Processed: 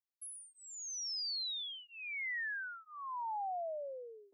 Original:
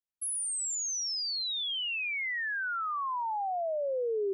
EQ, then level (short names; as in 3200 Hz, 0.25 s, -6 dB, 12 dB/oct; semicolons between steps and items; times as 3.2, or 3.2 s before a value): HPF 540 Hz; fixed phaser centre 1900 Hz, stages 8; -5.0 dB